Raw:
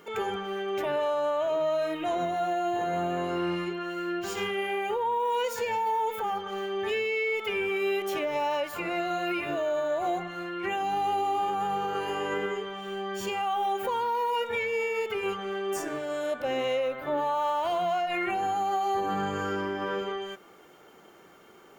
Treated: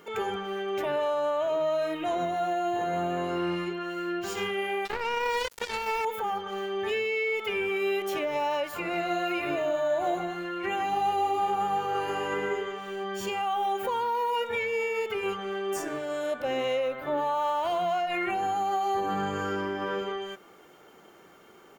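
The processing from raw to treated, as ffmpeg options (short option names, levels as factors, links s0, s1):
-filter_complex "[0:a]asettb=1/sr,asplit=3[s0][s1][s2];[s0]atrim=end=4.854[s3];[s1]atrim=start=4.85:end=6.05,asetpts=PTS-STARTPTS,afade=t=in:d=0.004:c=qsin,afade=t=out:st=1.196:d=0.004:c=qsin,acrusher=bits=3:mix=0:aa=0.5[s4];[s2]atrim=start=6.046[s5];[s3][s4]acrossfade=d=0.004:c1=hsin:c2=qsin[s6];[s6][s5]acrossfade=d=0.004:c1=qsin:c2=hsin,asplit=3[s7][s8][s9];[s7]afade=t=out:st=8.92:d=0.02[s10];[s8]aecho=1:1:151:0.473,afade=t=in:st=8.92:d=0.02,afade=t=out:st=13.03:d=0.02[s11];[s9]afade=t=in:st=13.03:d=0.02[s12];[s10][s11][s12]amix=inputs=3:normalize=0"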